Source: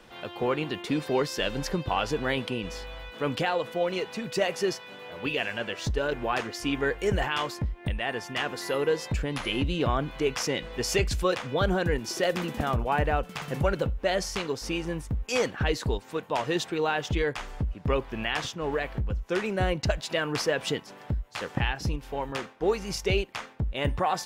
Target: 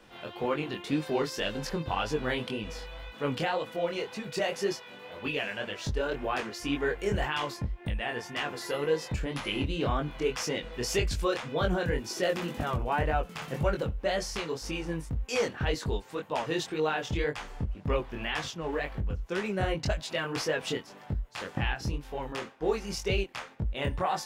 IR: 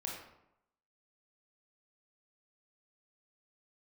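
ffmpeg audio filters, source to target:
-af "flanger=delay=19:depth=6:speed=1.9"

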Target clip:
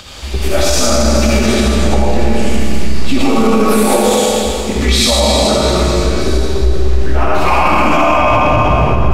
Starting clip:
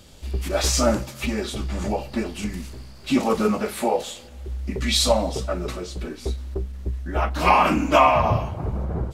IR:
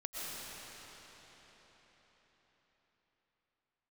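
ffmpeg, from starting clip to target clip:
-filter_complex "[0:a]asettb=1/sr,asplit=3[a][b][c];[a]atrim=end=3.564[d];[b]atrim=start=3.56:end=4.64,asetpts=PTS-STARTPTS,afade=t=in:d=0.004:c=qsin,afade=t=out:st=1.076:d=0.004:c=qsin,highshelf=f=3.5k:g=8.5[e];[c]atrim=start=4.636[f];[d][e]acrossfade=d=0.004:c1=hsin:c2=qsin[g];[g][f]acrossfade=d=0.004:c1=qsin:c2=hsin,acrossover=split=710|6700[h][i][j];[i]acompressor=mode=upward:threshold=-37dB:ratio=2.5[k];[h][k][j]amix=inputs=3:normalize=0[l];[1:a]atrim=start_sample=2205,asetrate=83790,aresample=44100[m];[l][m]afir=irnorm=-1:irlink=0,alimiter=level_in=19.5dB:limit=-1dB:release=50:level=0:latency=1,volume=-1dB"

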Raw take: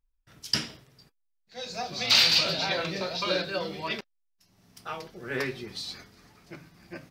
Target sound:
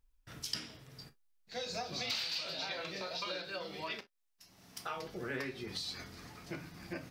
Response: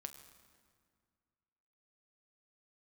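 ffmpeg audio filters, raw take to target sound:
-filter_complex "[0:a]acompressor=threshold=-43dB:ratio=5,asettb=1/sr,asplit=3[a][b][c];[a]atrim=end=2.244[d];[b]atrim=start=2.24:end=4.96,asetpts=PTS-STARTPTS,afade=t=in:d=0.004:c=qsin,afade=t=out:st=2.716:d=0.004:c=qsin,lowshelf=f=280:g=-8.5[e];[c]atrim=start=4.956[f];[d][e]acrossfade=d=0.004:c1=hsin:c2=qsin[g];[g][f]acrossfade=d=0.004:c1=qsin:c2=hsin[h];[1:a]atrim=start_sample=2205,afade=t=out:st=0.13:d=0.01,atrim=end_sample=6174,asetrate=57330,aresample=44100[i];[h][i]afir=irnorm=-1:irlink=0,volume=12dB"

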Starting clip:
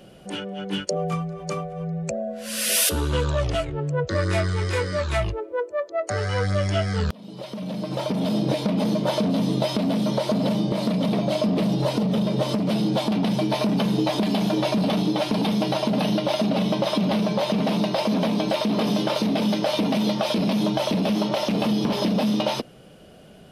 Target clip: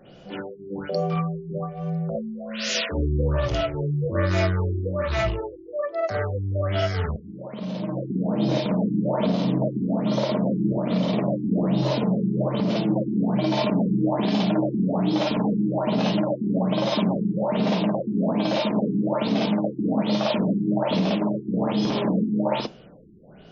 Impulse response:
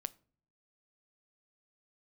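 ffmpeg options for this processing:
-filter_complex "[0:a]asplit=2[a][b];[b]lowshelf=f=260:g=-3[c];[1:a]atrim=start_sample=2205,asetrate=52920,aresample=44100,adelay=54[d];[c][d]afir=irnorm=-1:irlink=0,volume=6dB[e];[a][e]amix=inputs=2:normalize=0,afftfilt=real='re*lt(b*sr/1024,390*pow(7300/390,0.5+0.5*sin(2*PI*1.2*pts/sr)))':imag='im*lt(b*sr/1024,390*pow(7300/390,0.5+0.5*sin(2*PI*1.2*pts/sr)))':win_size=1024:overlap=0.75,volume=-3.5dB"

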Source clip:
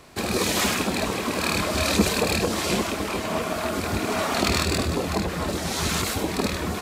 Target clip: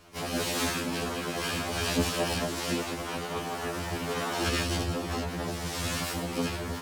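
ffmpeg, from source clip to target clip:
-filter_complex "[0:a]asplit=3[a][b][c];[b]asetrate=29433,aresample=44100,atempo=1.49831,volume=-1dB[d];[c]asetrate=55563,aresample=44100,atempo=0.793701,volume=-1dB[e];[a][d][e]amix=inputs=3:normalize=0,afftfilt=real='re*2*eq(mod(b,4),0)':imag='im*2*eq(mod(b,4),0)':win_size=2048:overlap=0.75,volume=-8dB"

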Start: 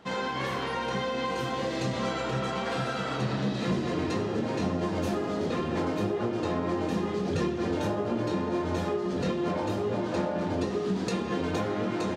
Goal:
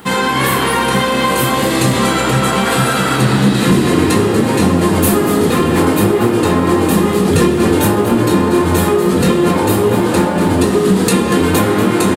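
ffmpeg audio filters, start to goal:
-filter_complex "[0:a]aexciter=amount=9.2:drive=6.5:freq=8.4k,apsyclip=22dB,equalizer=f=610:w=3.8:g=-10.5,asplit=2[a][b];[b]asplit=6[c][d][e][f][g][h];[c]adelay=238,afreqshift=68,volume=-11.5dB[i];[d]adelay=476,afreqshift=136,volume=-16.9dB[j];[e]adelay=714,afreqshift=204,volume=-22.2dB[k];[f]adelay=952,afreqshift=272,volume=-27.6dB[l];[g]adelay=1190,afreqshift=340,volume=-32.9dB[m];[h]adelay=1428,afreqshift=408,volume=-38.3dB[n];[i][j][k][l][m][n]amix=inputs=6:normalize=0[o];[a][o]amix=inputs=2:normalize=0,volume=-4.5dB"

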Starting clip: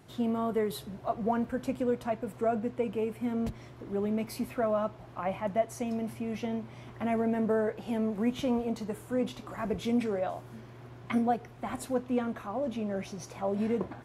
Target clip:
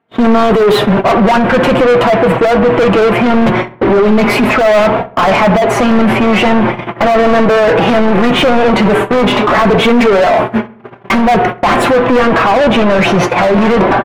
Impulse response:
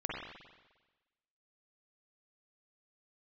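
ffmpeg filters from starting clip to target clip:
-filter_complex "[0:a]agate=range=-51dB:threshold=-43dB:ratio=16:detection=peak,highshelf=f=3.8k:t=q:w=1.5:g=-9,asplit=2[a][b];[b]acompressor=threshold=-43dB:ratio=6,volume=-2.5dB[c];[a][c]amix=inputs=2:normalize=0,asplit=2[d][e];[e]highpass=f=720:p=1,volume=32dB,asoftclip=type=tanh:threshold=-15.5dB[f];[d][f]amix=inputs=2:normalize=0,lowpass=f=1k:p=1,volume=-6dB,flanger=delay=4.3:depth=2:regen=30:speed=0.2:shape=triangular,apsyclip=29.5dB,asplit=2[g][h];[h]adelay=66,lowpass=f=2.3k:p=1,volume=-18dB,asplit=2[i][j];[j]adelay=66,lowpass=f=2.3k:p=1,volume=0.53,asplit=2[k][l];[l]adelay=66,lowpass=f=2.3k:p=1,volume=0.53,asplit=2[m][n];[n]adelay=66,lowpass=f=2.3k:p=1,volume=0.53[o];[i][k][m][o]amix=inputs=4:normalize=0[p];[g][p]amix=inputs=2:normalize=0,volume=-5.5dB"

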